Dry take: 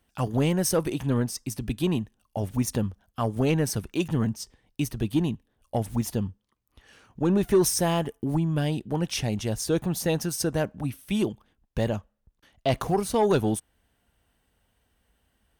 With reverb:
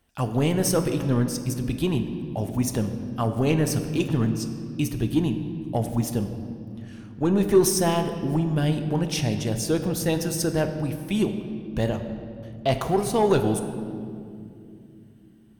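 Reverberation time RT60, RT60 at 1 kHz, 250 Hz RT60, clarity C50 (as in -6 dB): 2.6 s, 2.1 s, 4.7 s, 8.5 dB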